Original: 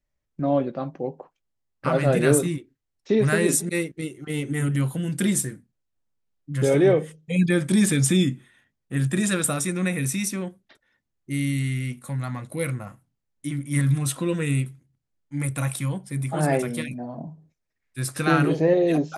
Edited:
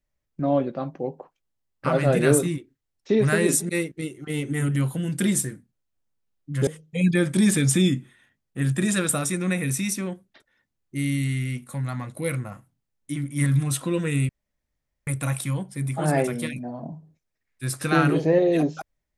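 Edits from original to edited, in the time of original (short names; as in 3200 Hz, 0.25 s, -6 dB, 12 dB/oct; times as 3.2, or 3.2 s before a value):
6.67–7.02 cut
14.64–15.42 room tone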